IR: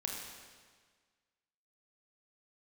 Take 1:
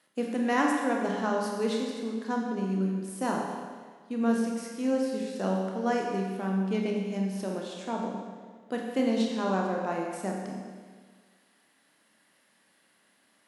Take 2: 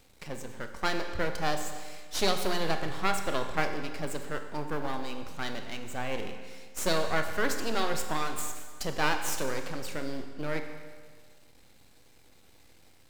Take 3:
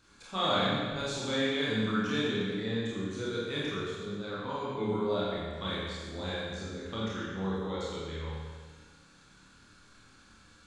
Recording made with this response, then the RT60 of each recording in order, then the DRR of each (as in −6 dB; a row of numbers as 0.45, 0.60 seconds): 1; 1.6, 1.6, 1.6 seconds; −1.0, 6.0, −8.0 decibels